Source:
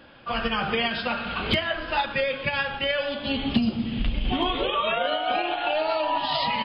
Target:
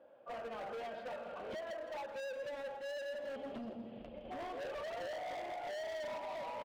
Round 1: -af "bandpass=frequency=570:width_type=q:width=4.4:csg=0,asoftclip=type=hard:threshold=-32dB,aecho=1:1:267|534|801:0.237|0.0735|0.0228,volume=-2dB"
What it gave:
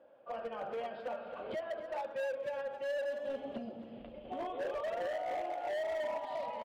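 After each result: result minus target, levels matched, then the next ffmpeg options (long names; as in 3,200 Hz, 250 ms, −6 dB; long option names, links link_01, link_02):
echo 103 ms late; hard clipping: distortion −5 dB
-af "bandpass=frequency=570:width_type=q:width=4.4:csg=0,asoftclip=type=hard:threshold=-32dB,aecho=1:1:164|328|492:0.237|0.0735|0.0228,volume=-2dB"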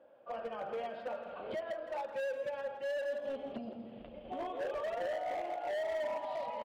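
hard clipping: distortion −5 dB
-af "bandpass=frequency=570:width_type=q:width=4.4:csg=0,asoftclip=type=hard:threshold=-39dB,aecho=1:1:164|328|492:0.237|0.0735|0.0228,volume=-2dB"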